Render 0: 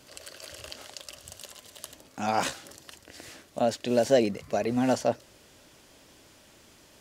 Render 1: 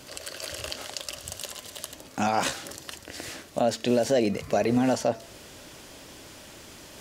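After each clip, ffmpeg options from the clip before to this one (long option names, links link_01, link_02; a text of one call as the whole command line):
ffmpeg -i in.wav -af "alimiter=limit=-21.5dB:level=0:latency=1:release=214,areverse,acompressor=mode=upward:threshold=-49dB:ratio=2.5,areverse,bandreject=frequency=224.6:width_type=h:width=4,bandreject=frequency=449.2:width_type=h:width=4,bandreject=frequency=673.8:width_type=h:width=4,bandreject=frequency=898.4:width_type=h:width=4,bandreject=frequency=1123:width_type=h:width=4,bandreject=frequency=1347.6:width_type=h:width=4,bandreject=frequency=1572.2:width_type=h:width=4,bandreject=frequency=1796.8:width_type=h:width=4,bandreject=frequency=2021.4:width_type=h:width=4,bandreject=frequency=2246:width_type=h:width=4,bandreject=frequency=2470.6:width_type=h:width=4,bandreject=frequency=2695.2:width_type=h:width=4,bandreject=frequency=2919.8:width_type=h:width=4,bandreject=frequency=3144.4:width_type=h:width=4,bandreject=frequency=3369:width_type=h:width=4,bandreject=frequency=3593.6:width_type=h:width=4,bandreject=frequency=3818.2:width_type=h:width=4,bandreject=frequency=4042.8:width_type=h:width=4,bandreject=frequency=4267.4:width_type=h:width=4,bandreject=frequency=4492:width_type=h:width=4,bandreject=frequency=4716.6:width_type=h:width=4,bandreject=frequency=4941.2:width_type=h:width=4,bandreject=frequency=5165.8:width_type=h:width=4,bandreject=frequency=5390.4:width_type=h:width=4,bandreject=frequency=5615:width_type=h:width=4,bandreject=frequency=5839.6:width_type=h:width=4,bandreject=frequency=6064.2:width_type=h:width=4,bandreject=frequency=6288.8:width_type=h:width=4,bandreject=frequency=6513.4:width_type=h:width=4,bandreject=frequency=6738:width_type=h:width=4,bandreject=frequency=6962.6:width_type=h:width=4,bandreject=frequency=7187.2:width_type=h:width=4,bandreject=frequency=7411.8:width_type=h:width=4,bandreject=frequency=7636.4:width_type=h:width=4,volume=8dB" out.wav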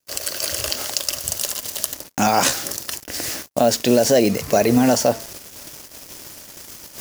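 ffmpeg -i in.wav -af "acrusher=bits=6:mix=0:aa=0.5,agate=range=-37dB:threshold=-45dB:ratio=16:detection=peak,aexciter=amount=2.7:drive=2.6:freq=4900,volume=7.5dB" out.wav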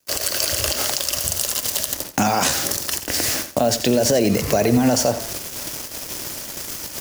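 ffmpeg -i in.wav -filter_complex "[0:a]alimiter=limit=-10dB:level=0:latency=1:release=64,acrossover=split=120[link_01][link_02];[link_02]acompressor=threshold=-28dB:ratio=2[link_03];[link_01][link_03]amix=inputs=2:normalize=0,aecho=1:1:86|172|258:0.251|0.0578|0.0133,volume=8dB" out.wav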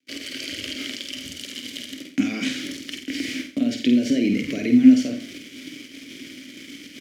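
ffmpeg -i in.wav -filter_complex "[0:a]asplit=3[link_01][link_02][link_03];[link_01]bandpass=frequency=270:width_type=q:width=8,volume=0dB[link_04];[link_02]bandpass=frequency=2290:width_type=q:width=8,volume=-6dB[link_05];[link_03]bandpass=frequency=3010:width_type=q:width=8,volume=-9dB[link_06];[link_04][link_05][link_06]amix=inputs=3:normalize=0,asplit=2[link_07][link_08];[link_08]adelay=50,volume=-6dB[link_09];[link_07][link_09]amix=inputs=2:normalize=0,volume=8dB" out.wav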